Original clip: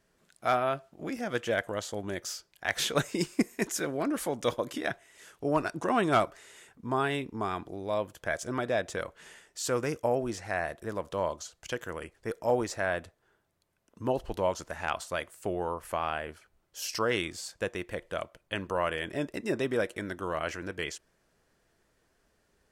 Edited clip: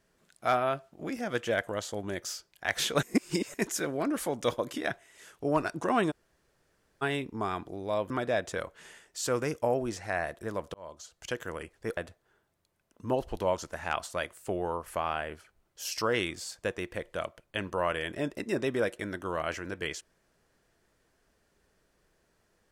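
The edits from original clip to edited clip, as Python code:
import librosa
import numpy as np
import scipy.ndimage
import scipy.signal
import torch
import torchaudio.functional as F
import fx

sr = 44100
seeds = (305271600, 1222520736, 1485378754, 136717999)

y = fx.edit(x, sr, fx.reverse_span(start_s=3.03, length_s=0.51),
    fx.room_tone_fill(start_s=6.11, length_s=0.91, crossfade_s=0.02),
    fx.cut(start_s=8.1, length_s=0.41),
    fx.fade_in_span(start_s=11.15, length_s=0.53),
    fx.cut(start_s=12.38, length_s=0.56), tone=tone)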